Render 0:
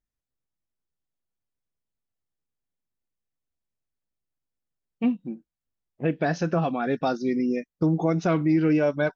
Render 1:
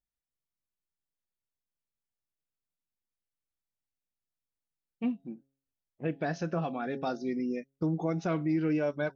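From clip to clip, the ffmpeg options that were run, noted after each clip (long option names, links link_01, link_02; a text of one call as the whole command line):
ffmpeg -i in.wav -af "bandreject=frequency=136.1:width_type=h:width=4,bandreject=frequency=272.2:width_type=h:width=4,bandreject=frequency=408.3:width_type=h:width=4,bandreject=frequency=544.4:width_type=h:width=4,bandreject=frequency=680.5:width_type=h:width=4,bandreject=frequency=816.6:width_type=h:width=4,volume=-7.5dB" out.wav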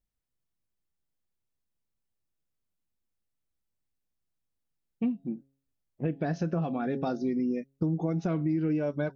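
ffmpeg -i in.wav -af "lowshelf=frequency=470:gain=10.5,acompressor=threshold=-27dB:ratio=3" out.wav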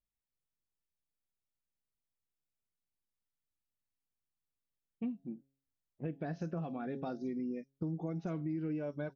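ffmpeg -i in.wav -filter_complex "[0:a]acrossover=split=5600[link_01][link_02];[link_02]adelay=50[link_03];[link_01][link_03]amix=inputs=2:normalize=0,volume=-9dB" out.wav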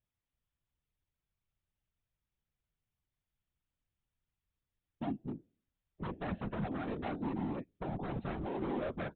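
ffmpeg -i in.wav -af "aresample=8000,aeval=exprs='0.0158*(abs(mod(val(0)/0.0158+3,4)-2)-1)':channel_layout=same,aresample=44100,afftfilt=real='hypot(re,im)*cos(2*PI*random(0))':imag='hypot(re,im)*sin(2*PI*random(1))':win_size=512:overlap=0.75,volume=9.5dB" out.wav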